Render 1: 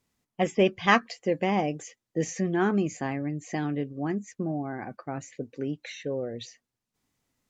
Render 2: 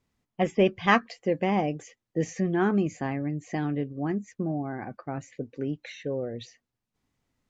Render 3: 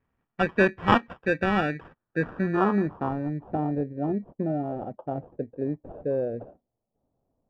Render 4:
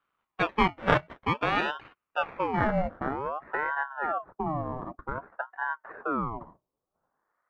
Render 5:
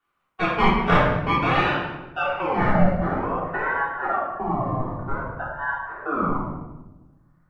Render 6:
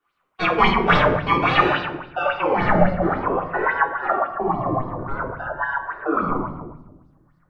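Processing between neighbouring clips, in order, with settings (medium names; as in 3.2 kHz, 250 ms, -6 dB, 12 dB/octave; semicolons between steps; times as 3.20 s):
low-pass 3.7 kHz 6 dB/octave; bass shelf 92 Hz +6.5 dB
sample-and-hold 21×; low-pass sweep 2 kHz -> 650 Hz, 1.72–3.90 s
ring modulator with a swept carrier 820 Hz, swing 55%, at 0.53 Hz
reverberation RT60 1.1 s, pre-delay 3 ms, DRR -8 dB; trim -2.5 dB
sweeping bell 3.6 Hz 340–4800 Hz +13 dB; trim -1 dB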